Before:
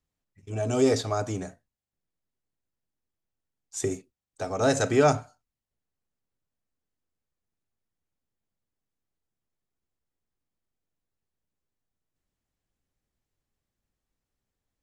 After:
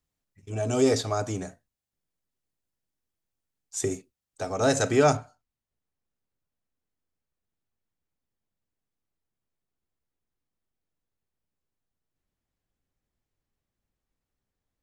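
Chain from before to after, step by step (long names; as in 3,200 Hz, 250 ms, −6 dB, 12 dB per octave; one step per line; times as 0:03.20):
high-shelf EQ 4,200 Hz +3 dB, from 0:05.17 −5.5 dB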